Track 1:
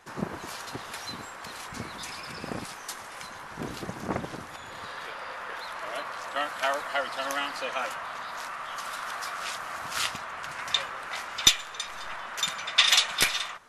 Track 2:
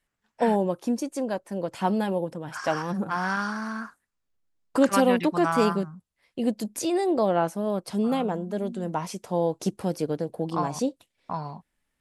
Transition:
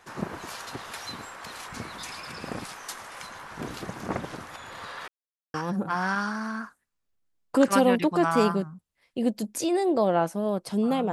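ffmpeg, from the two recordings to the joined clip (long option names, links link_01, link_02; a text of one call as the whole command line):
ffmpeg -i cue0.wav -i cue1.wav -filter_complex "[0:a]apad=whole_dur=11.12,atrim=end=11.12,asplit=2[link_01][link_02];[link_01]atrim=end=5.08,asetpts=PTS-STARTPTS,afade=type=out:start_time=5.076:duration=0.004:curve=hsin[link_03];[link_02]atrim=start=5.08:end=5.54,asetpts=PTS-STARTPTS,volume=0[link_04];[1:a]atrim=start=2.75:end=8.33,asetpts=PTS-STARTPTS,afade=type=in:duration=0.004:curve=hsin[link_05];[link_03][link_04][link_05]concat=n=3:v=0:a=1" out.wav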